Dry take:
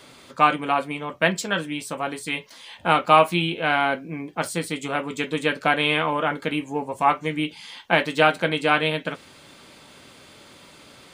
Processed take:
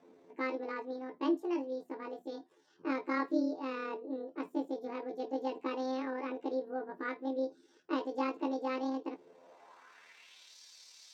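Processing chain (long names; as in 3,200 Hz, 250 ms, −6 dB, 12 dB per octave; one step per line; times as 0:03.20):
pitch shift by two crossfaded delay taps +9.5 semitones
band-pass filter sweep 330 Hz → 4,800 Hz, 0:09.15–0:10.57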